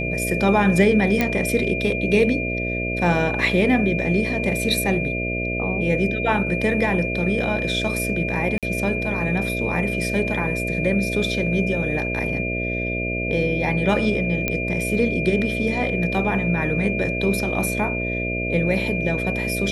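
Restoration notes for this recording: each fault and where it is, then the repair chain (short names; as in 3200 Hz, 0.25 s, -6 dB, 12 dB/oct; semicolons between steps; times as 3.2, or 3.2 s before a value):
buzz 60 Hz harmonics 11 -27 dBFS
tone 2400 Hz -26 dBFS
1.21 pop -6 dBFS
8.58–8.63 gap 47 ms
14.48 pop -7 dBFS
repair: de-click; de-hum 60 Hz, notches 11; notch 2400 Hz, Q 30; interpolate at 8.58, 47 ms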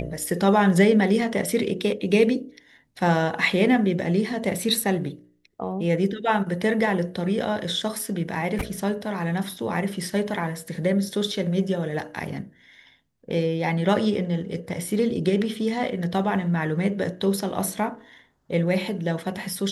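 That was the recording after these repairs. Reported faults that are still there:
none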